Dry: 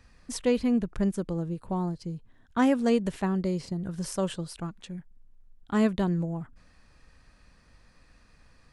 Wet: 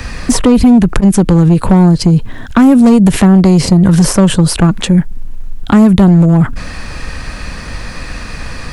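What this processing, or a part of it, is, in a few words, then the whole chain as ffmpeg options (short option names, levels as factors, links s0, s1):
mastering chain: -filter_complex "[0:a]equalizer=f=2400:t=o:w=0.77:g=2,acrossover=split=280|1300|8000[s0][s1][s2][s3];[s0]acompressor=threshold=0.0355:ratio=4[s4];[s1]acompressor=threshold=0.01:ratio=4[s5];[s2]acompressor=threshold=0.002:ratio=4[s6];[s3]acompressor=threshold=0.00178:ratio=4[s7];[s4][s5][s6][s7]amix=inputs=4:normalize=0,acompressor=threshold=0.0224:ratio=2,asoftclip=type=tanh:threshold=0.0422,asoftclip=type=hard:threshold=0.0266,alimiter=level_in=59.6:limit=0.891:release=50:level=0:latency=1,volume=0.891"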